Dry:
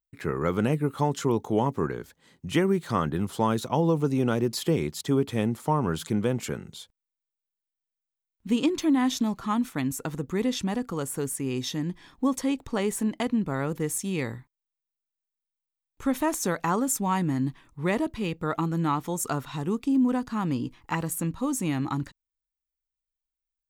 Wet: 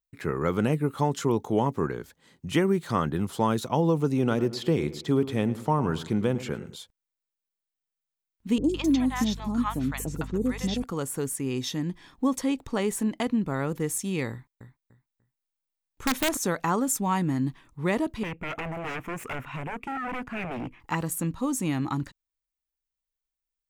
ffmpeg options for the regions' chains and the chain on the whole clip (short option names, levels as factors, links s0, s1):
-filter_complex "[0:a]asettb=1/sr,asplit=3[s0][s1][s2];[s0]atrim=end=4.124[s3];[s1]atrim=start=4.12:end=6.76,asetpts=PTS-STARTPTS,afade=t=in:d=0.004:c=qsin,afade=t=out:st=2.636:d=0.004:c=qsin,acrossover=split=5300[s4][s5];[s5]acompressor=threshold=0.00282:ratio=4:attack=1:release=60[s6];[s4][s6]amix=inputs=2:normalize=0,asplit=2[s7][s8];[s8]adelay=107,lowpass=f=1700:p=1,volume=0.2,asplit=2[s9][s10];[s10]adelay=107,lowpass=f=1700:p=1,volume=0.41,asplit=2[s11][s12];[s12]adelay=107,lowpass=f=1700:p=1,volume=0.41,asplit=2[s13][s14];[s14]adelay=107,lowpass=f=1700:p=1,volume=0.41[s15];[s7][s9][s11][s13][s15]amix=inputs=5:normalize=0,atrim=end_sample=116424[s16];[s2]atrim=start=6.756[s17];[s3][s16]acrossfade=d=0.004:c1=hsin:c2=qsin[s18];[s18][s17]acrossfade=d=0.004:c1=qsin:c2=hsin,asettb=1/sr,asplit=3[s19][s20][s21];[s19]atrim=end=8.584[s22];[s20]atrim=start=8.58:end=10.84,asetpts=PTS-STARTPTS,afade=t=in:d=0.004:c=qsin,afade=t=out:st=2.256:d=0.004:c=qsin,aeval=exprs='val(0)+0.0141*(sin(2*PI*50*n/s)+sin(2*PI*2*50*n/s)/2+sin(2*PI*3*50*n/s)/3+sin(2*PI*4*50*n/s)/4+sin(2*PI*5*50*n/s)/5)':c=same,acrossover=split=650|5900[s23][s24][s25];[s25]adelay=60[s26];[s24]adelay=160[s27];[s23][s27][s26]amix=inputs=3:normalize=0,atrim=end_sample=99666[s28];[s21]atrim=start=10.836[s29];[s22][s28]acrossfade=d=0.004:c1=hsin:c2=qsin[s30];[s30][s29]acrossfade=d=0.004:c1=qsin:c2=hsin,asettb=1/sr,asplit=3[s31][s32][s33];[s31]atrim=end=14.314[s34];[s32]atrim=start=14.31:end=16.37,asetpts=PTS-STARTPTS,afade=t=in:d=0.004:c=qsin,afade=t=out:st=2.056:d=0.004:c=qsin,aecho=1:1:295|590|885:0.398|0.0955|0.0229,atrim=end_sample=90846,aeval=exprs='(mod(6.68*val(0)+1,2)-1)/6.68':c=same[s35];[s33]atrim=start=16.366[s36];[s34][s35]acrossfade=d=0.004:c1=hsin:c2=qsin[s37];[s37][s36]acrossfade=d=0.004:c1=qsin:c2=hsin,asettb=1/sr,asplit=3[s38][s39][s40];[s38]atrim=end=18.234[s41];[s39]atrim=start=18.23:end=20.8,asetpts=PTS-STARTPTS,afade=t=in:d=0.004:c=qsin,afade=t=out:st=2.566:d=0.004:c=qsin,aeval=exprs='0.0376*(abs(mod(val(0)/0.0376+3,4)-2)-1)':c=same,highshelf=f=3200:t=q:w=3:g=-9[s42];[s40]atrim=start=20.796[s43];[s41][s42]acrossfade=d=0.004:c1=hsin:c2=qsin[s44];[s44][s43]acrossfade=d=0.004:c1=qsin:c2=hsin"